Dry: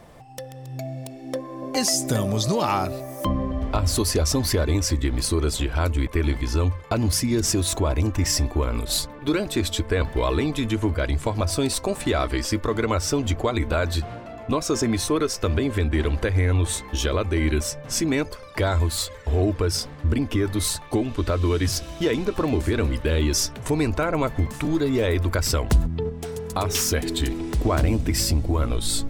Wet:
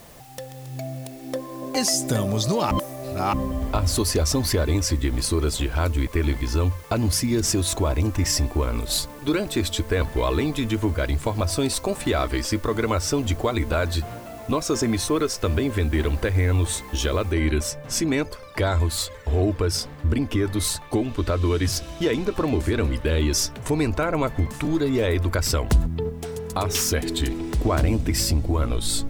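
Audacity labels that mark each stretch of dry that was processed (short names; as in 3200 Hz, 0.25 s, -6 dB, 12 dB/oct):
2.710000	3.330000	reverse
17.320000	17.320000	noise floor step -51 dB -67 dB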